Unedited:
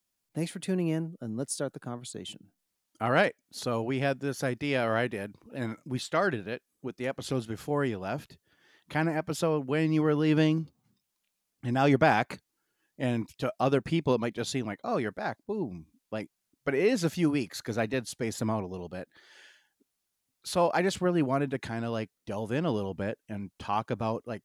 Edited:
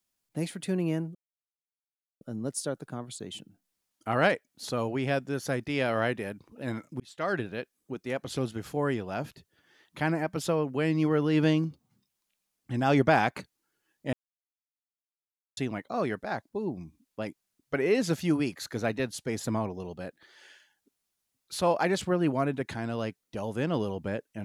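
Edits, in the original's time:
0:01.15: splice in silence 1.06 s
0:05.94–0:06.35: fade in
0:13.07–0:14.51: silence

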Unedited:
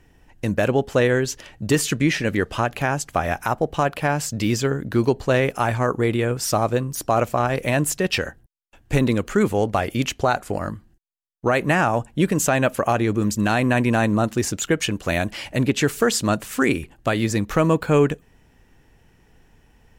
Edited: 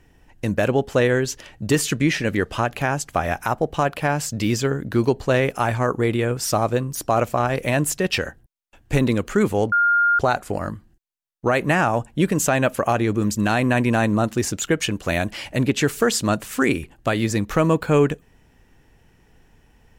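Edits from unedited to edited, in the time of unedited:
0:09.72–0:10.19: beep over 1,410 Hz −14 dBFS

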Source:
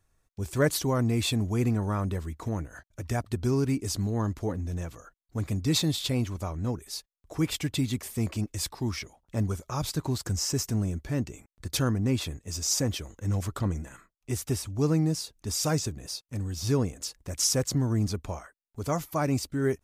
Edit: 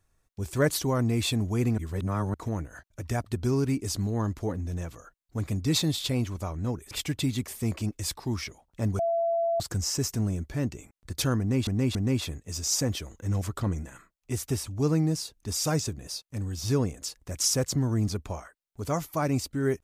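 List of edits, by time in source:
0:01.78–0:02.34: reverse
0:06.91–0:07.46: remove
0:09.54–0:10.15: beep over 673 Hz −23 dBFS
0:11.94–0:12.22: repeat, 3 plays

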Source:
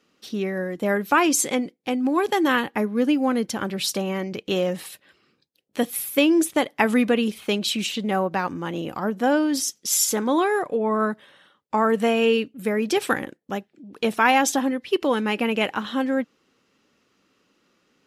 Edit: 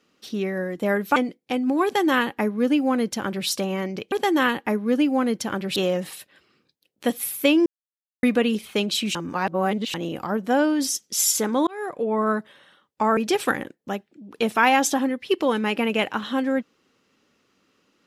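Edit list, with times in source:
0:01.16–0:01.53: remove
0:02.21–0:03.85: duplicate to 0:04.49
0:06.39–0:06.96: silence
0:07.88–0:08.67: reverse
0:10.40–0:10.97: fade in equal-power
0:11.90–0:12.79: remove

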